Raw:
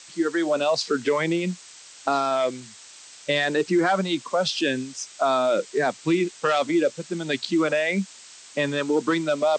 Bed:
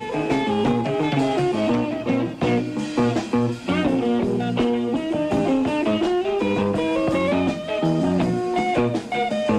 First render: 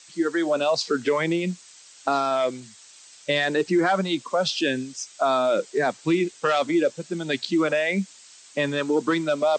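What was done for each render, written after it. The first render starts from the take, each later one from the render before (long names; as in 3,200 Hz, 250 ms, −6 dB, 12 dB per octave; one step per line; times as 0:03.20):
broadband denoise 6 dB, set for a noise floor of −47 dBFS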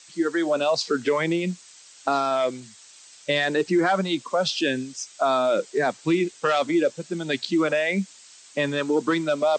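no processing that can be heard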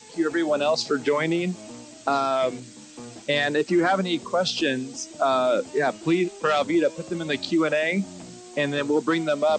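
mix in bed −21 dB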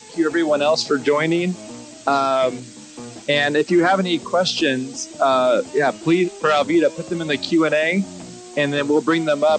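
level +5 dB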